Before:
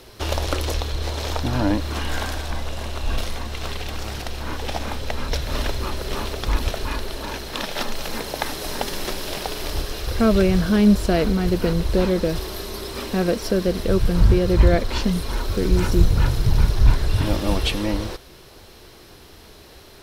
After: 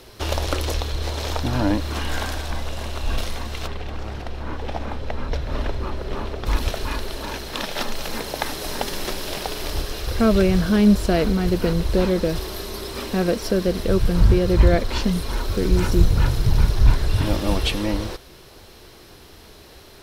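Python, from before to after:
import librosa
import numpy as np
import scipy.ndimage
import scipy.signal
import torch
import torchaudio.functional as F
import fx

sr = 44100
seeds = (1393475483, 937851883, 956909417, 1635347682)

y = fx.lowpass(x, sr, hz=1400.0, slope=6, at=(3.66, 6.45), fade=0.02)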